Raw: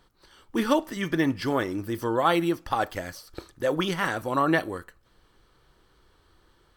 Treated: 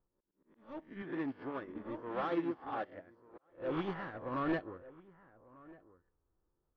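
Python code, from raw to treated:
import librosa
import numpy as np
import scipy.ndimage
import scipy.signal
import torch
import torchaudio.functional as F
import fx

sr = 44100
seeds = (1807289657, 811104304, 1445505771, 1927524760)

y = fx.spec_swells(x, sr, rise_s=0.55)
y = 10.0 ** (-22.5 / 20.0) * np.tanh(y / 10.0 ** (-22.5 / 20.0))
y = fx.highpass(y, sr, hz=270.0, slope=6, at=(1.02, 3.5))
y = y + 10.0 ** (-8.5 / 20.0) * np.pad(y, (int(1195 * sr / 1000.0), 0))[:len(y)]
y = fx.env_lowpass(y, sr, base_hz=1000.0, full_db=-19.5)
y = fx.auto_swell(y, sr, attack_ms=377.0)
y = fx.spacing_loss(y, sr, db_at_10k=36)
y = fx.upward_expand(y, sr, threshold_db=-39.0, expansion=2.5)
y = y * librosa.db_to_amplitude(-2.0)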